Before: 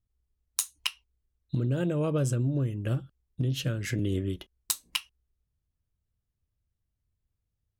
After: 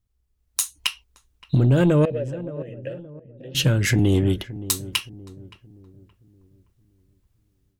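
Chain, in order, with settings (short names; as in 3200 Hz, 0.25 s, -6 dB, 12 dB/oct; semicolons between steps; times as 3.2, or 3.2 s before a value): in parallel at -2.5 dB: limiter -21 dBFS, peak gain reduction 10 dB; on the sum: AGC gain up to 8.5 dB; soft clip -9.5 dBFS, distortion -18 dB; 2.05–3.55 vowel filter e; darkening echo 0.571 s, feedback 43%, low-pass 880 Hz, level -15 dB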